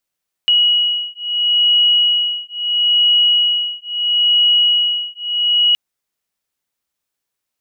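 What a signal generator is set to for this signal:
two tones that beat 2,910 Hz, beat 0.75 Hz, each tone −15 dBFS 5.27 s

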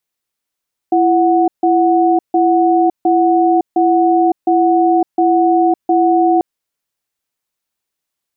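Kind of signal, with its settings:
tone pair in a cadence 336 Hz, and 737 Hz, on 0.56 s, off 0.15 s, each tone −11.5 dBFS 5.49 s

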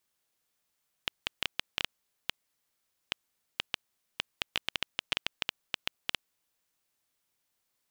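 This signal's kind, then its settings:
Geiger counter clicks 5.3 per second −10 dBFS 5.70 s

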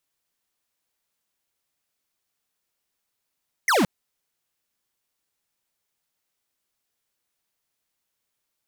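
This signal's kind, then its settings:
single falling chirp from 2,200 Hz, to 160 Hz, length 0.17 s square, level −19 dB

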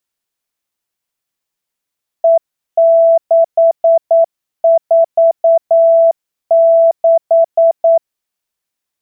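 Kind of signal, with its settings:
Morse code "E646" 9 words per minute 663 Hz −5 dBFS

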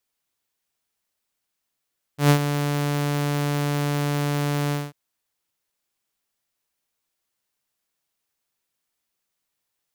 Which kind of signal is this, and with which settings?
note with an ADSR envelope saw 145 Hz, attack 120 ms, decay 82 ms, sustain −10 dB, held 2.54 s, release 205 ms −9 dBFS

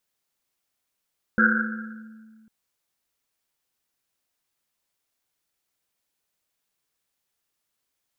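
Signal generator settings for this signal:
drum after Risset, pitch 220 Hz, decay 2.08 s, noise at 1,500 Hz, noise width 270 Hz, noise 55%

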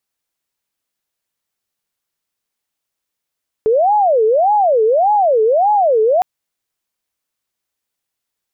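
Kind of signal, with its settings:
siren wail 432–844 Hz 1.7 per second sine −9.5 dBFS 2.56 s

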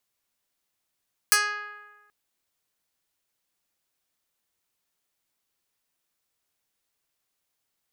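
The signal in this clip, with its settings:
Karplus-Strong string G#4, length 0.78 s, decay 1.32 s, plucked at 0.11, medium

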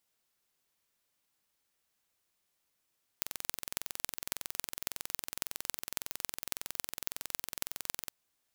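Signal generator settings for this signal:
impulse train 21.8 per second, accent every 6, −4 dBFS 4.88 s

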